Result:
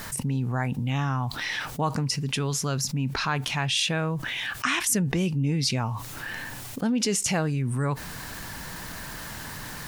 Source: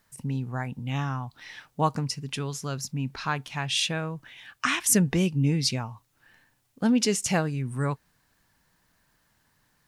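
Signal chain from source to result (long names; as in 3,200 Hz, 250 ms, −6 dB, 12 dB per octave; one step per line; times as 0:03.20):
envelope flattener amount 70%
level −4.5 dB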